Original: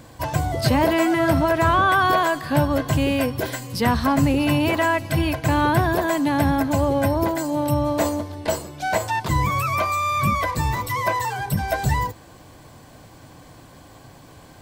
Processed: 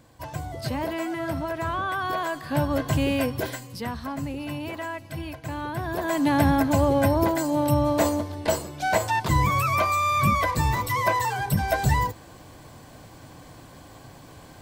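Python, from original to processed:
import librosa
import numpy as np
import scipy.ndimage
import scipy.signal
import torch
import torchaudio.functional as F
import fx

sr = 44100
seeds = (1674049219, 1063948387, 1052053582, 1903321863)

y = fx.gain(x, sr, db=fx.line((2.0, -10.5), (2.82, -3.0), (3.45, -3.0), (3.91, -13.0), (5.74, -13.0), (6.26, -0.5)))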